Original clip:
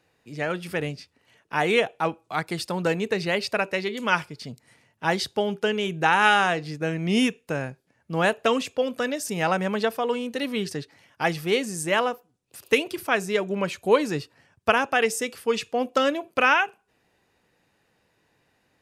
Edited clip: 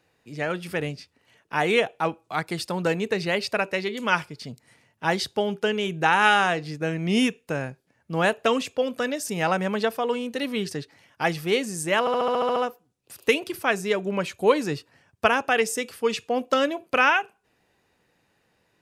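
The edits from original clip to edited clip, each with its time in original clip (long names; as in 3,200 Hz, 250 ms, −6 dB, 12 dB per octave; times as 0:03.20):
0:12.00: stutter 0.07 s, 9 plays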